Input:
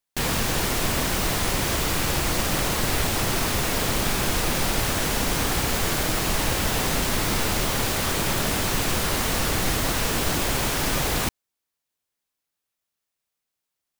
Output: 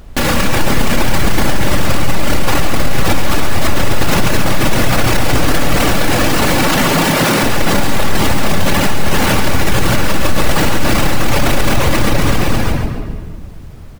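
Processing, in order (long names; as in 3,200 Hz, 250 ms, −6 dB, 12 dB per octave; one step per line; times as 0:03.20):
wavefolder on the positive side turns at −22.5 dBFS
0:05.63–0:07.43: high-pass filter 140 Hz 24 dB per octave
on a send: bouncing-ball delay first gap 470 ms, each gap 0.75×, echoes 5
on the sum: rectangular room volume 1,800 cubic metres, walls mixed, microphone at 2.4 metres
reverb reduction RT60 0.53 s
high-shelf EQ 3,400 Hz −8 dB
background noise brown −58 dBFS
boost into a limiter +28 dB
feedback echo at a low word length 137 ms, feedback 35%, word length 7 bits, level −9 dB
level −3.5 dB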